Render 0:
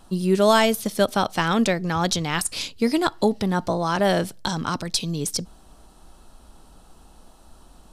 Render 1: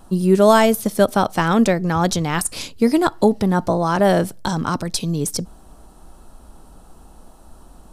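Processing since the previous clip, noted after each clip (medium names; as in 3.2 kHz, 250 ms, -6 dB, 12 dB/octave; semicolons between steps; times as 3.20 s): peaking EQ 3.6 kHz -8 dB 2 oct; trim +5.5 dB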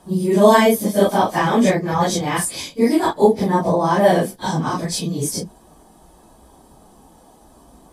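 phase randomisation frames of 100 ms; comb of notches 1.4 kHz; trim +2 dB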